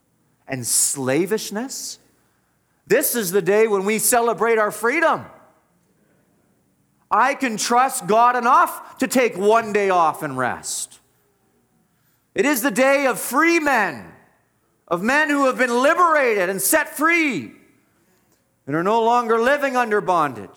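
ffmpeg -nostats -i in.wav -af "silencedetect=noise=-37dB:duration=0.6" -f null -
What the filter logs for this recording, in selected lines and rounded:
silence_start: 1.95
silence_end: 2.90 | silence_duration: 0.95
silence_start: 5.35
silence_end: 7.11 | silence_duration: 1.76
silence_start: 10.96
silence_end: 12.36 | silence_duration: 1.40
silence_start: 14.15
silence_end: 14.88 | silence_duration: 0.73
silence_start: 17.54
silence_end: 18.68 | silence_duration: 1.14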